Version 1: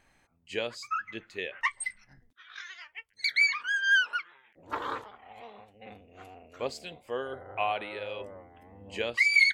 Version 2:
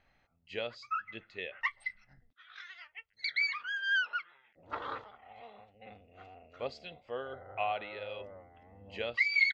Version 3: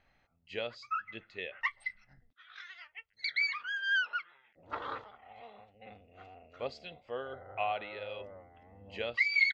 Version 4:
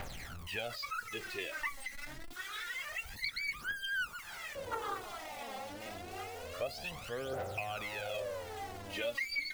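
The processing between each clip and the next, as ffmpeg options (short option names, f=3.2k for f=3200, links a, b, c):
-af "lowpass=f=4.8k:w=0.5412,lowpass=f=4.8k:w=1.3066,aecho=1:1:1.5:0.31,volume=-5dB"
-af anull
-filter_complex "[0:a]aeval=exprs='val(0)+0.5*0.00708*sgn(val(0))':c=same,aphaser=in_gain=1:out_gain=1:delay=3.8:decay=0.73:speed=0.27:type=triangular,acrossover=split=450|6000[a][b][c];[a]acompressor=threshold=-44dB:ratio=4[d];[b]acompressor=threshold=-37dB:ratio=4[e];[c]acompressor=threshold=-52dB:ratio=4[f];[d][e][f]amix=inputs=3:normalize=0"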